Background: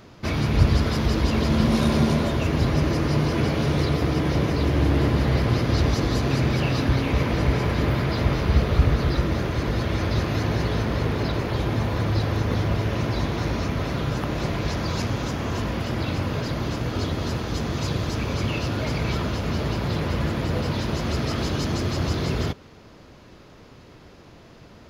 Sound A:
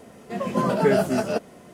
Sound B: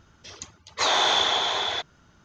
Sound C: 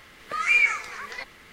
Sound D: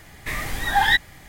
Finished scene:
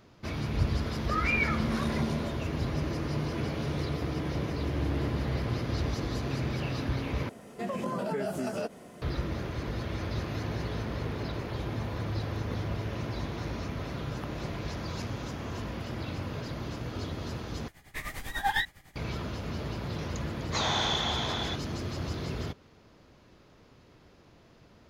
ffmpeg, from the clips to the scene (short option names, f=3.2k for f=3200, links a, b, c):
-filter_complex "[0:a]volume=-10dB[a];[3:a]lowpass=1.4k[b];[1:a]acompressor=threshold=-27dB:ratio=6:attack=3.2:release=140:knee=1:detection=peak[c];[4:a]tremolo=f=10:d=0.75[d];[a]asplit=3[e][f][g];[e]atrim=end=7.294[h];[c]atrim=end=1.73,asetpts=PTS-STARTPTS,volume=-2dB[i];[f]atrim=start=9.016:end=17.684[j];[d]atrim=end=1.28,asetpts=PTS-STARTPTS,volume=-7dB[k];[g]atrim=start=18.956[l];[b]atrim=end=1.52,asetpts=PTS-STARTPTS,afade=t=in:d=0.004:c=hsin,afade=t=out:st=1.516:d=0.004:c=hsin,adelay=780[m];[2:a]atrim=end=2.24,asetpts=PTS-STARTPTS,volume=-8dB,afade=t=in:d=0.004:c=hsin,afade=t=out:st=2.236:d=0.004:c=hsin,adelay=19740[n];[h][i]acrossfade=d=0.004:c1=hsin:c2=hsin[o];[o][j]acrossfade=d=0.004:c1=hsin:c2=hsin[p];[p][k]acrossfade=d=0.004:c1=hsin:c2=hsin[q];[q][l]acrossfade=d=0.004:c1=hsin:c2=hsin[r];[r][m][n]amix=inputs=3:normalize=0"